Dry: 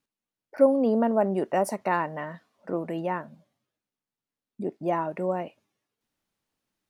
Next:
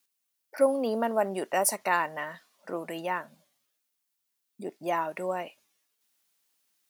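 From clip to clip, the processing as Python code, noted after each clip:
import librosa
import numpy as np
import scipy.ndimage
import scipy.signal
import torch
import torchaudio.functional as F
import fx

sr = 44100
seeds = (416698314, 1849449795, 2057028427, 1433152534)

y = fx.tilt_eq(x, sr, slope=4.0)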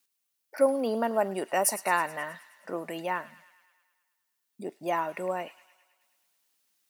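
y = fx.echo_wet_highpass(x, sr, ms=106, feedback_pct=64, hz=1800.0, wet_db=-14.0)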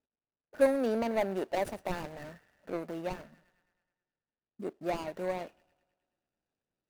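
y = scipy.ndimage.median_filter(x, 41, mode='constant')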